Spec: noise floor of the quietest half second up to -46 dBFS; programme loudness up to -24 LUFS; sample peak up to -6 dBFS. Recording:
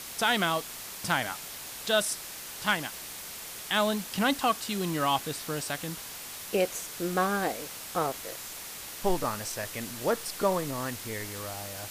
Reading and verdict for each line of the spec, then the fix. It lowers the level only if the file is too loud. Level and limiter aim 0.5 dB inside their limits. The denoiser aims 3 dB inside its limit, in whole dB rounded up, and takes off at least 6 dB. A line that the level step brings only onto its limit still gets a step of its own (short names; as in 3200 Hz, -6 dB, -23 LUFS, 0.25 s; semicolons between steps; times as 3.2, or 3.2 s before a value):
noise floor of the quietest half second -41 dBFS: fail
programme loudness -30.5 LUFS: OK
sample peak -12.5 dBFS: OK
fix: denoiser 8 dB, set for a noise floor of -41 dBFS